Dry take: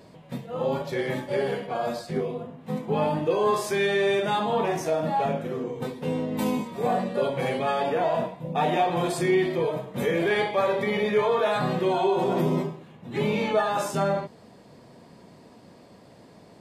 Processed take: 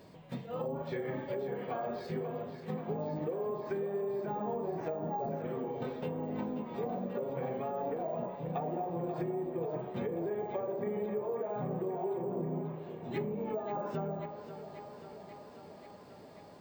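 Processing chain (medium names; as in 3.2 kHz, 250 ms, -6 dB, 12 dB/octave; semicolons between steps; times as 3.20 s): low-pass that closes with the level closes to 600 Hz, closed at -21 dBFS; compression, threshold -28 dBFS, peak gain reduction 9 dB; thinning echo 537 ms, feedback 76%, high-pass 240 Hz, level -10 dB; on a send at -15 dB: reverberation RT60 0.50 s, pre-delay 3 ms; on the sum: careless resampling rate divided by 2×, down filtered, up hold; trim -5 dB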